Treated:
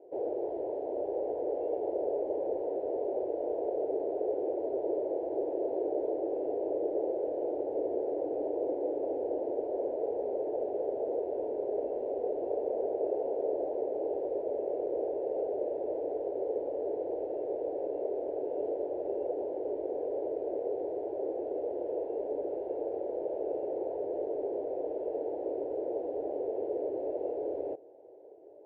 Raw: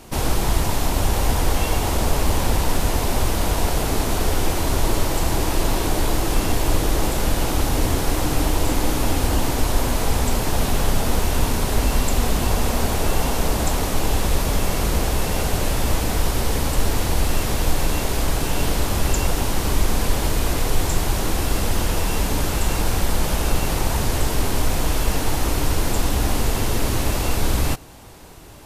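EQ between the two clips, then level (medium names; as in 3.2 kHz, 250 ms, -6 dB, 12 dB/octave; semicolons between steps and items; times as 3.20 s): Butterworth band-pass 480 Hz, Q 1.7; distance through air 210 m; static phaser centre 490 Hz, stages 4; 0.0 dB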